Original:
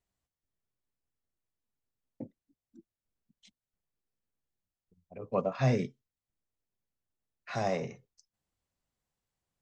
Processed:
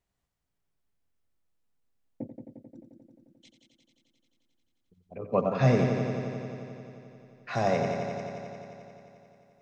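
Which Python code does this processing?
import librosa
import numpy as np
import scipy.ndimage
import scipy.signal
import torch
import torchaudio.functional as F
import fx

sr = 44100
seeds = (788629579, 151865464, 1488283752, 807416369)

y = fx.high_shelf(x, sr, hz=4500.0, db=-5.5)
y = fx.echo_heads(y, sr, ms=88, heads='first and second', feedback_pct=74, wet_db=-10.0)
y = F.gain(torch.from_numpy(y), 4.5).numpy()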